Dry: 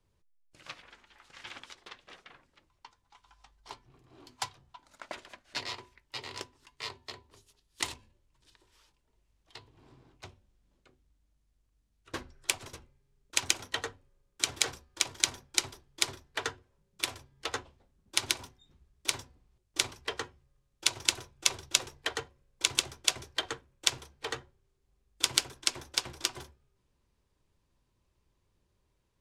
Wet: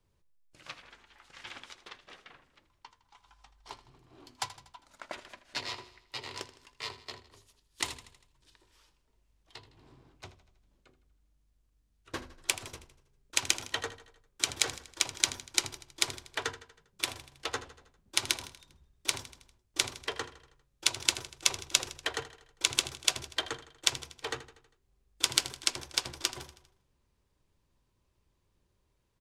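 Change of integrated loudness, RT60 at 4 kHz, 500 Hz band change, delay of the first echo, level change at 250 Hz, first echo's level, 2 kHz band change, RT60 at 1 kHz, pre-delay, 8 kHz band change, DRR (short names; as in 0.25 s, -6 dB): 0.0 dB, none, 0.0 dB, 80 ms, 0.0 dB, -15.5 dB, 0.0 dB, none, none, 0.0 dB, none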